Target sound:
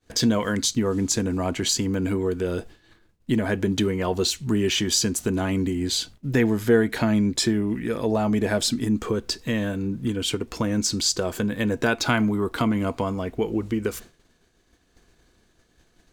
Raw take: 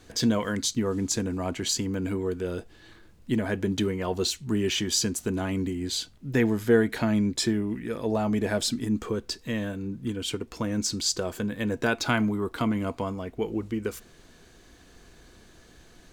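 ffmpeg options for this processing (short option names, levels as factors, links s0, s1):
-filter_complex "[0:a]agate=range=0.0224:threshold=0.00891:ratio=3:detection=peak,asplit=2[s0][s1];[s1]acompressor=threshold=0.0251:ratio=6,volume=1.41[s2];[s0][s2]amix=inputs=2:normalize=0"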